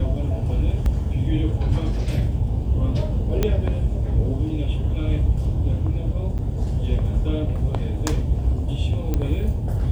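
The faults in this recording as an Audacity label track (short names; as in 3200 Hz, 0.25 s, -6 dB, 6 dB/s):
0.860000	0.860000	gap 2 ms
3.430000	3.430000	pop -7 dBFS
6.380000	6.390000	gap 8 ms
9.140000	9.140000	pop -11 dBFS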